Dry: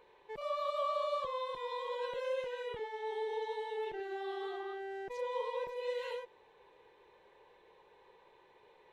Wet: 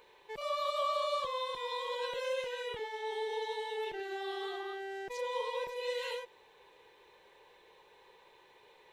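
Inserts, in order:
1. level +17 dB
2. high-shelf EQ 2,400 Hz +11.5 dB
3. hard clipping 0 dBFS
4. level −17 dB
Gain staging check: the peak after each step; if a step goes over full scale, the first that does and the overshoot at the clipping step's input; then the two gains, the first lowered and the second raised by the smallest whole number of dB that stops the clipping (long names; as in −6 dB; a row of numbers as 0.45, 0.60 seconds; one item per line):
−7.5, −6.0, −6.0, −23.0 dBFS
no step passes full scale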